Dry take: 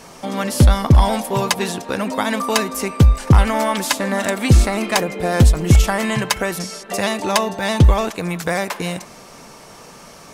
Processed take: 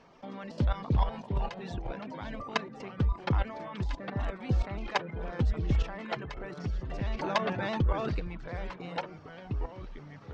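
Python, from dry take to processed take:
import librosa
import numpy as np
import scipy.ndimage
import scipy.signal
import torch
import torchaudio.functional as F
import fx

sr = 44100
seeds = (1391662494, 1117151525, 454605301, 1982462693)

y = scipy.ndimage.gaussian_filter1d(x, 2.1, mode='constant')
y = fx.dereverb_blind(y, sr, rt60_s=0.72)
y = fx.level_steps(y, sr, step_db=17)
y = fx.echo_pitch(y, sr, ms=231, semitones=-3, count=3, db_per_echo=-6.0)
y = fx.env_flatten(y, sr, amount_pct=50, at=(7.19, 8.2))
y = y * librosa.db_to_amplitude(-7.5)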